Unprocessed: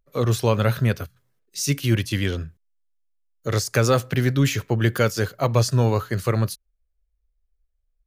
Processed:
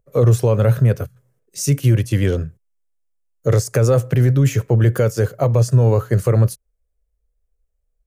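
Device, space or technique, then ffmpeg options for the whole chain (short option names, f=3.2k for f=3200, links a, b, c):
stacked limiters: -af "equalizer=f=125:t=o:w=1:g=11,equalizer=f=500:t=o:w=1:g=10,equalizer=f=4k:t=o:w=1:g=-8,equalizer=f=8k:t=o:w=1:g=5,alimiter=limit=-4dB:level=0:latency=1:release=388,alimiter=limit=-7.5dB:level=0:latency=1:release=14,volume=1dB"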